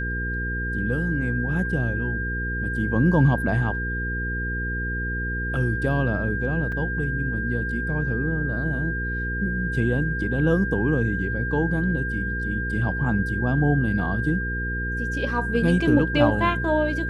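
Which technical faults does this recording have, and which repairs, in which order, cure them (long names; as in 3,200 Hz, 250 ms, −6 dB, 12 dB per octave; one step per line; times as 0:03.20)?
mains hum 60 Hz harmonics 8 −29 dBFS
whistle 1,600 Hz −28 dBFS
0:06.72: drop-out 3.8 ms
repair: hum removal 60 Hz, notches 8
notch filter 1,600 Hz, Q 30
repair the gap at 0:06.72, 3.8 ms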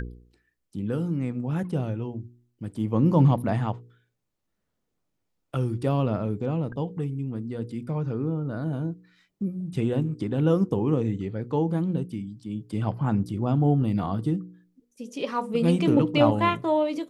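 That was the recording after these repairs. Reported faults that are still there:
none of them is left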